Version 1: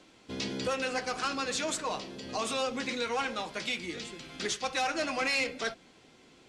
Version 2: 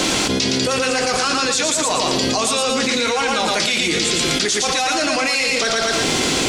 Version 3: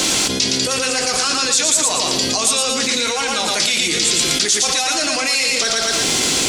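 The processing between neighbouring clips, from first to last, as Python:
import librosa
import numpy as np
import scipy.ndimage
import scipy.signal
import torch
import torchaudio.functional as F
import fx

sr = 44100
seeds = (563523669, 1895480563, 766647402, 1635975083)

y1 = fx.bass_treble(x, sr, bass_db=-1, treble_db=8)
y1 = fx.echo_feedback(y1, sr, ms=115, feedback_pct=26, wet_db=-5.0)
y1 = fx.env_flatten(y1, sr, amount_pct=100)
y1 = y1 * 10.0 ** (6.0 / 20.0)
y2 = fx.high_shelf(y1, sr, hz=3900.0, db=11.5)
y2 = y2 * 10.0 ** (-3.5 / 20.0)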